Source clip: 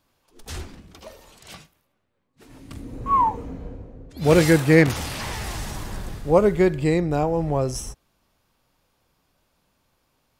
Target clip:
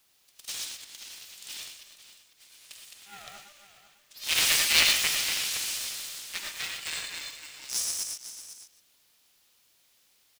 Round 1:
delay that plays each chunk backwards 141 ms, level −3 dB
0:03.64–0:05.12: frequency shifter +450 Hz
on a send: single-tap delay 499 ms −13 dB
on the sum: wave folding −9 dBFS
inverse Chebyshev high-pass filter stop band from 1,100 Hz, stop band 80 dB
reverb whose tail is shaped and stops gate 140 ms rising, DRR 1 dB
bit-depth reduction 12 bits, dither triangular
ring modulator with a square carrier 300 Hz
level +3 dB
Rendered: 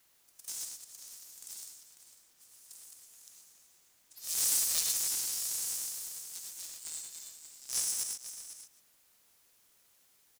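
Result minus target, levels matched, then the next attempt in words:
1,000 Hz band −8.5 dB
delay that plays each chunk backwards 141 ms, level −3 dB
0:03.64–0:05.12: frequency shifter +450 Hz
on a send: single-tap delay 499 ms −13 dB
on the sum: wave folding −9 dBFS
inverse Chebyshev high-pass filter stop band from 460 Hz, stop band 80 dB
reverb whose tail is shaped and stops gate 140 ms rising, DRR 1 dB
bit-depth reduction 12 bits, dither triangular
ring modulator with a square carrier 300 Hz
level +3 dB

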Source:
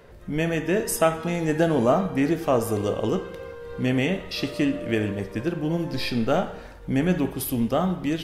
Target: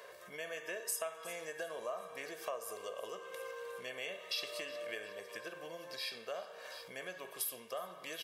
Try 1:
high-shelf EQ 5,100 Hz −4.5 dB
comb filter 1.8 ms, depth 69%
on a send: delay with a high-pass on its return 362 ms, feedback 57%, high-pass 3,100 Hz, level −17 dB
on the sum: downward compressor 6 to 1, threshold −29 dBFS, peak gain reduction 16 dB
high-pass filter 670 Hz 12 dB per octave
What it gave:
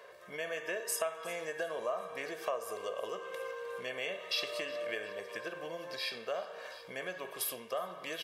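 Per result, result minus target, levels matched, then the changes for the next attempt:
downward compressor: peak gain reduction −5.5 dB; 8,000 Hz band −2.5 dB
change: downward compressor 6 to 1, threshold −35.5 dBFS, peak gain reduction 21.5 dB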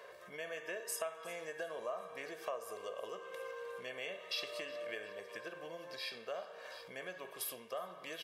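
8,000 Hz band −2.5 dB
change: high-shelf EQ 5,100 Hz +4.5 dB

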